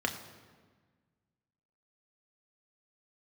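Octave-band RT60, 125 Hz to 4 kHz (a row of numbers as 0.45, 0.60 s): 2.1, 1.9, 1.5, 1.4, 1.3, 1.1 s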